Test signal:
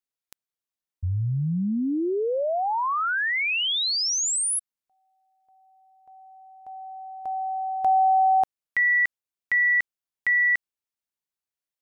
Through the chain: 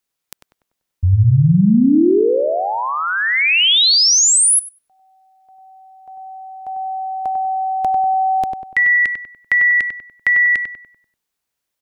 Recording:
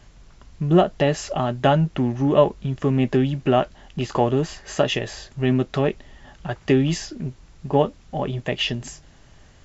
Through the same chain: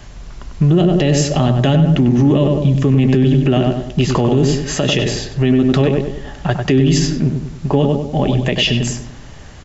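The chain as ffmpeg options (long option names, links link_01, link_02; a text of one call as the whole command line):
ffmpeg -i in.wav -filter_complex "[0:a]acrossover=split=420|2300[link_01][link_02][link_03];[link_02]acompressor=threshold=-36dB:ratio=6:attack=48:release=932:knee=2.83:detection=peak[link_04];[link_01][link_04][link_03]amix=inputs=3:normalize=0,asplit=2[link_05][link_06];[link_06]adelay=97,lowpass=frequency=1900:poles=1,volume=-5dB,asplit=2[link_07][link_08];[link_08]adelay=97,lowpass=frequency=1900:poles=1,volume=0.46,asplit=2[link_09][link_10];[link_10]adelay=97,lowpass=frequency=1900:poles=1,volume=0.46,asplit=2[link_11][link_12];[link_12]adelay=97,lowpass=frequency=1900:poles=1,volume=0.46,asplit=2[link_13][link_14];[link_14]adelay=97,lowpass=frequency=1900:poles=1,volume=0.46,asplit=2[link_15][link_16];[link_16]adelay=97,lowpass=frequency=1900:poles=1,volume=0.46[link_17];[link_07][link_09][link_11][link_13][link_15][link_17]amix=inputs=6:normalize=0[link_18];[link_05][link_18]amix=inputs=2:normalize=0,alimiter=level_in=16.5dB:limit=-1dB:release=50:level=0:latency=1,volume=-4dB" out.wav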